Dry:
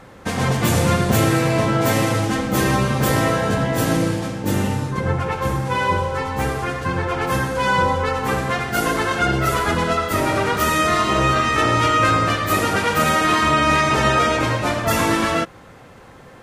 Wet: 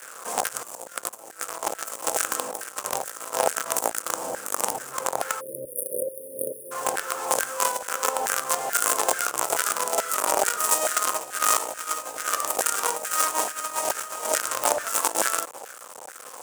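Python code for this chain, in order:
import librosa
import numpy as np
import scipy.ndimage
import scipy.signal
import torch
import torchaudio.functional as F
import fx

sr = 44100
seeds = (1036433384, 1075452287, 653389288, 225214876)

y = fx.quant_companded(x, sr, bits=2)
y = fx.graphic_eq(y, sr, hz=(125, 250, 500, 1000, 2000, 4000, 8000), db=(12, 7, 11, -7, -9, -10, 10))
y = fx.over_compress(y, sr, threshold_db=-11.0, ratio=-0.5)
y = fx.filter_lfo_highpass(y, sr, shape='saw_down', hz=2.3, low_hz=780.0, high_hz=1600.0, q=4.0)
y = fx.spec_erase(y, sr, start_s=5.41, length_s=1.31, low_hz=620.0, high_hz=9200.0)
y = y * 10.0 ** (-9.5 / 20.0)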